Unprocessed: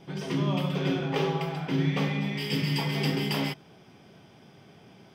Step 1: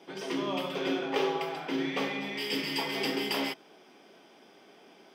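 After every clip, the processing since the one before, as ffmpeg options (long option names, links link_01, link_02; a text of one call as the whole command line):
ffmpeg -i in.wav -af "highpass=frequency=270:width=0.5412,highpass=frequency=270:width=1.3066" out.wav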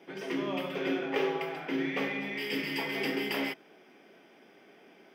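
ffmpeg -i in.wav -af "equalizer=frequency=1000:width_type=o:width=1:gain=-5,equalizer=frequency=2000:width_type=o:width=1:gain=5,equalizer=frequency=4000:width_type=o:width=1:gain=-7,equalizer=frequency=8000:width_type=o:width=1:gain=-7" out.wav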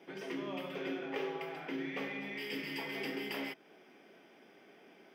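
ffmpeg -i in.wav -af "acompressor=threshold=-42dB:ratio=1.5,volume=-2.5dB" out.wav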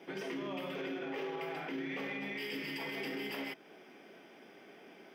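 ffmpeg -i in.wav -af "alimiter=level_in=11.5dB:limit=-24dB:level=0:latency=1:release=32,volume=-11.5dB,volume=4dB" out.wav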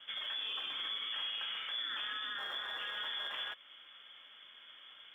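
ffmpeg -i in.wav -filter_complex "[0:a]lowpass=frequency=3100:width_type=q:width=0.5098,lowpass=frequency=3100:width_type=q:width=0.6013,lowpass=frequency=3100:width_type=q:width=0.9,lowpass=frequency=3100:width_type=q:width=2.563,afreqshift=-3700,acrossover=split=580[link_01][link_02];[link_01]acrusher=samples=28:mix=1:aa=0.000001[link_03];[link_03][link_02]amix=inputs=2:normalize=0" out.wav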